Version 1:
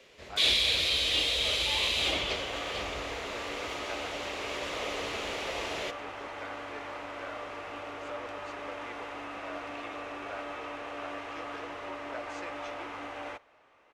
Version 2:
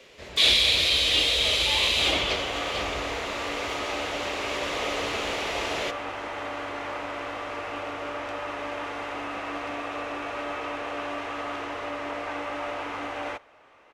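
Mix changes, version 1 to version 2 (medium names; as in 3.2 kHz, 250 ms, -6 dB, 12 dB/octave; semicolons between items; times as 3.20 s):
speech: muted; first sound +5.5 dB; second sound +7.0 dB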